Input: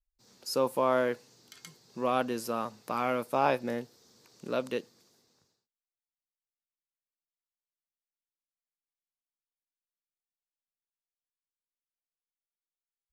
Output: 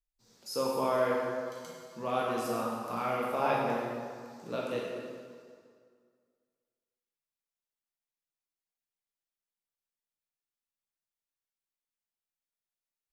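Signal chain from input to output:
dense smooth reverb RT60 2 s, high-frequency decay 0.75×, DRR −4.5 dB
level −6.5 dB

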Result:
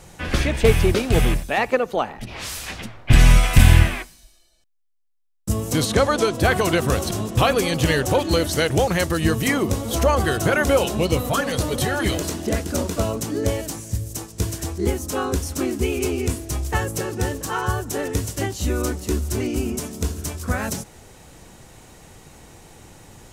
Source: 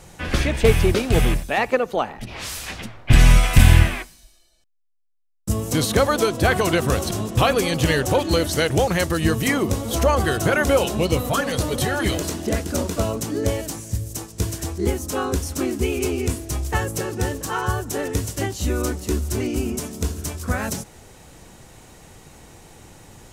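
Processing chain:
0:05.85–0:06.34: low-pass filter 9,400 Hz 12 dB per octave

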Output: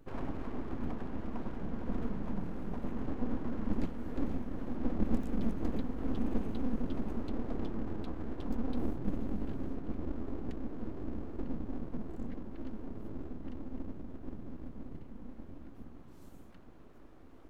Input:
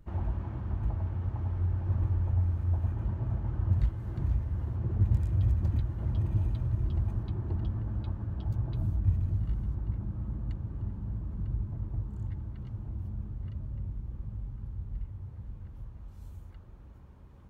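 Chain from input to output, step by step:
low shelf with overshoot 100 Hz −10.5 dB, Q 3
full-wave rectification
level +1.5 dB

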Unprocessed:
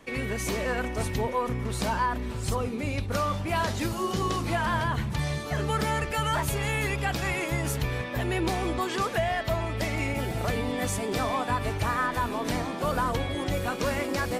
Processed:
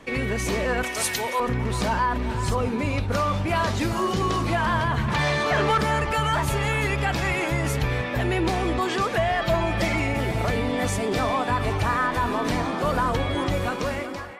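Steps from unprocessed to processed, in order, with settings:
fade-out on the ending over 0.89 s
high-shelf EQ 9,500 Hz −10.5 dB
0:05.08–0:05.78: mid-hump overdrive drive 18 dB, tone 2,700 Hz, clips at −15.5 dBFS
0:09.41–0:10.00: comb filter 5.8 ms, depth 99%
in parallel at 0 dB: brickwall limiter −24 dBFS, peak gain reduction 9.5 dB
0:00.83–0:01.40: on the sum: spectral tilt +4.5 dB per octave
on a send: delay with a band-pass on its return 383 ms, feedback 58%, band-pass 1,300 Hz, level −11 dB

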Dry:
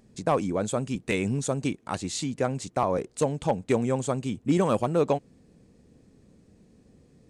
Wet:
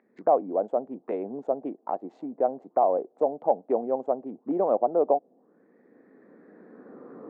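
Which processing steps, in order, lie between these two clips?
adaptive Wiener filter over 15 samples
camcorder AGC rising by 11 dB per second
high-pass filter 270 Hz 24 dB per octave
envelope-controlled low-pass 710–2,100 Hz down, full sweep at −31.5 dBFS
level −4 dB

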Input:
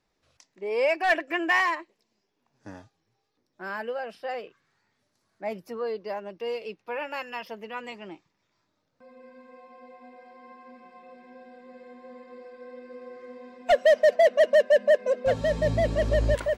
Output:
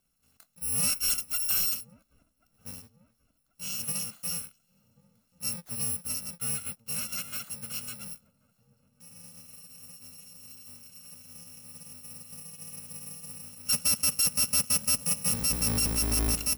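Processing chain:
samples in bit-reversed order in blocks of 128 samples
parametric band 240 Hz +7 dB 1.1 octaves
delay with a low-pass on its return 1,086 ms, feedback 49%, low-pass 760 Hz, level −21 dB
soft clipping −22.5 dBFS, distortion −9 dB

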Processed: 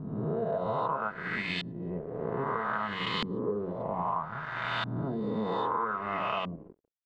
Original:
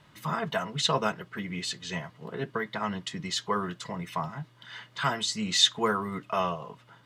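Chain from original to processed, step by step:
peak hold with a rise ahead of every peak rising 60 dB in 2.27 s
parametric band 6,100 Hz −12.5 dB 0.38 octaves
hum removal 47.43 Hz, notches 15
convolution reverb RT60 4.9 s, pre-delay 18 ms, DRR 20 dB
dead-zone distortion −38 dBFS
auto-filter low-pass saw up 0.62 Hz 240–3,100 Hz
downward compressor 12 to 1, threshold −27 dBFS, peak gain reduction 13.5 dB

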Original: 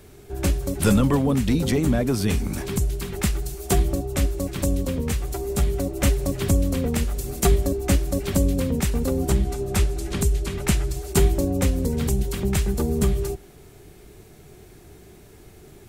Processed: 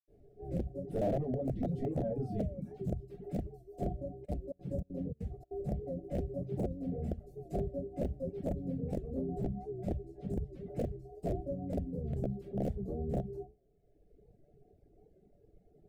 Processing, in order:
convolution reverb RT60 0.40 s, pre-delay 76 ms
0:01.90–0:02.61: sound drawn into the spectrogram fall 530–1,100 Hz −49 dBFS
0:04.24–0:05.68: gate pattern "xxx.xxx." 196 BPM −24 dB
reverb reduction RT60 1.5 s
soft clipping −31.5 dBFS, distortion −12 dB
dynamic equaliser 140 Hz, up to +8 dB, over −55 dBFS, Q 0.86
wrap-around overflow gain 27.5 dB
drawn EQ curve 420 Hz 0 dB, 690 Hz +4 dB, 1,000 Hz −29 dB, 1,800 Hz −20 dB, 10,000 Hz −27 dB
wow of a warped record 78 rpm, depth 100 cents
level +1 dB

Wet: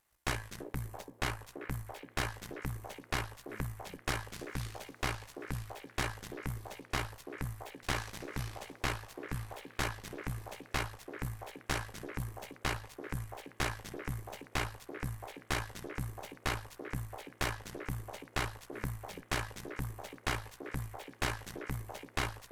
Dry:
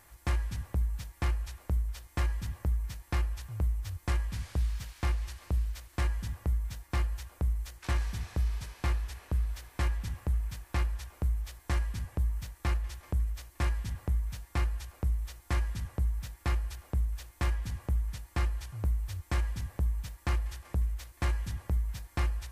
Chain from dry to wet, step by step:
low-shelf EQ 170 Hz −10.5 dB
harmonic generator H 3 −13 dB, 4 −7 dB, 5 −28 dB, 7 −24 dB, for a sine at −23 dBFS
echo through a band-pass that steps 336 ms, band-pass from 390 Hz, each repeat 0.7 octaves, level −1.5 dB
level +1.5 dB

